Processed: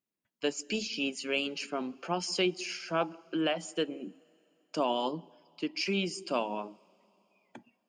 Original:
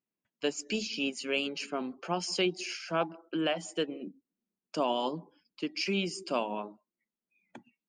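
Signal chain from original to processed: two-slope reverb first 0.22 s, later 3.4 s, from -18 dB, DRR 20 dB

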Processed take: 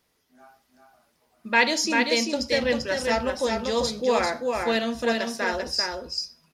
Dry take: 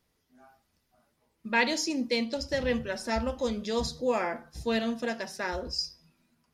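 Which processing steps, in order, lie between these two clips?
low shelf 210 Hz -10 dB; on a send: echo 0.392 s -4 dB; on the sum: gain +6 dB

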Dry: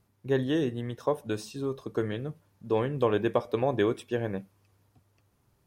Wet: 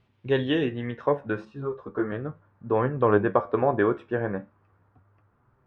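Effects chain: flange 0.36 Hz, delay 7.5 ms, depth 7.8 ms, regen +65%; low-pass sweep 3000 Hz -> 1400 Hz, 0.38–1.53; 1.45–2.12 ensemble effect; gain +7 dB

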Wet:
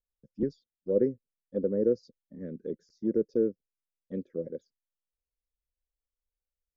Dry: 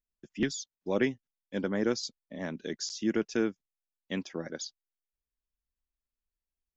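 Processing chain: EQ curve 320 Hz 0 dB, 520 Hz +10 dB, 740 Hz -23 dB, 1700 Hz -16 dB, 2800 Hz -26 dB, 4800 Hz -4 dB; envelope phaser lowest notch 320 Hz, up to 3300 Hz, full sweep at -24 dBFS; air absorption 350 m

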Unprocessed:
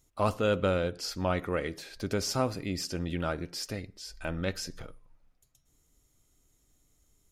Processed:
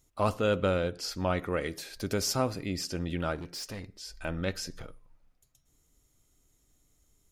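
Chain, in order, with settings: 1.6–2.32 high shelf 5900 Hz -> 8900 Hz +9 dB; 3.35–4.03 hard clip -35 dBFS, distortion -23 dB

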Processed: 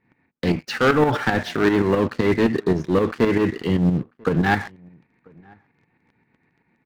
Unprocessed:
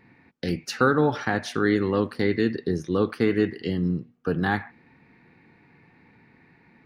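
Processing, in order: LPF 3400 Hz 12 dB/oct; sample leveller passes 3; tremolo saw up 7.7 Hz, depth 60%; outdoor echo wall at 170 m, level -28 dB

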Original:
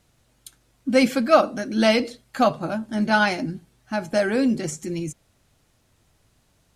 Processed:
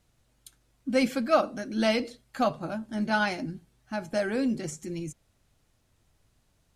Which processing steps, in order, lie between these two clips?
low shelf 60 Hz +7 dB; gain -7 dB

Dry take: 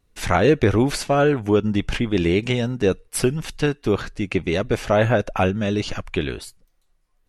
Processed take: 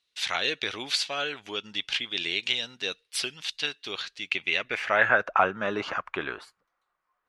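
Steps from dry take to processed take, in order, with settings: band-pass sweep 3700 Hz -> 1200 Hz, 4.19–5.37; 5.09–5.96 three-band squash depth 40%; gain +7 dB

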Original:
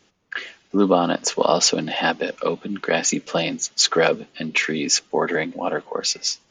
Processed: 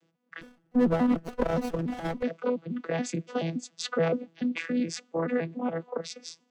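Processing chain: arpeggiated vocoder bare fifth, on E3, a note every 0.142 s; 0.41–2.23 running maximum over 17 samples; gain -6.5 dB

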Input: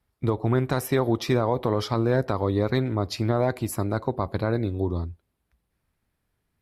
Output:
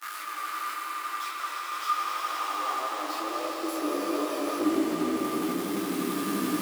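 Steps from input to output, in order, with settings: infinite clipping; HPF 65 Hz 6 dB/oct; gate with hold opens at -21 dBFS; low shelf 150 Hz -9.5 dB; level quantiser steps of 19 dB; small resonant body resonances 310/1200 Hz, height 18 dB, ringing for 95 ms; high-pass sweep 1300 Hz -> 210 Hz, 1.7–4.86; swelling echo 86 ms, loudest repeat 5, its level -6 dB; reverb RT60 1.9 s, pre-delay 30 ms, DRR 5 dB; spectral freeze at 3.82, 0.78 s; detuned doubles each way 15 cents

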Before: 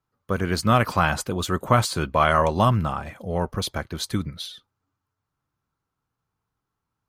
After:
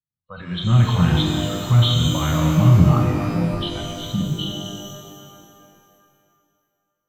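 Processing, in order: nonlinear frequency compression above 2800 Hz 4:1; spectral noise reduction 25 dB; resonant low shelf 240 Hz +13 dB, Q 3; in parallel at -5 dB: soft clip -11 dBFS, distortion -7 dB; on the sum: transient shaper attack -1 dB, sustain +11 dB; shimmer reverb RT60 2.4 s, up +12 st, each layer -8 dB, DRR 0.5 dB; gain -12 dB

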